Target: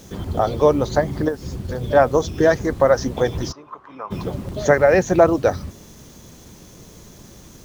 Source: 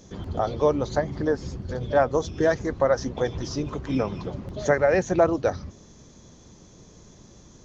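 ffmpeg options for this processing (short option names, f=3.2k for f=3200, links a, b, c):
-filter_complex "[0:a]asettb=1/sr,asplit=3[a][b][c];[a]atrim=end=1.284[d];[b]atrim=start=1.28:end=1.84,asetpts=PTS-STARTPTS,afade=t=in:d=0.004:c=qsin,afade=t=out:st=0.556:d=0.004:c=qsin,acompressor=threshold=-28dB:ratio=6[e];[c]atrim=start=1.836[f];[d][e]acrossfade=d=0.004:c1=hsin:c2=qsin[g];[g][f]acrossfade=d=0.004:c1=qsin:c2=hsin,acrusher=bits=8:mix=0:aa=0.000001,asplit=3[h][i][j];[h]afade=t=out:st=3.51:d=0.02[k];[i]bandpass=f=1.1k:t=q:w=3.8:csg=0,afade=t=in:st=3.51:d=0.02,afade=t=out:st=4.1:d=0.02[l];[j]afade=t=in:st=4.1:d=0.02[m];[k][l][m]amix=inputs=3:normalize=0,volume=6dB"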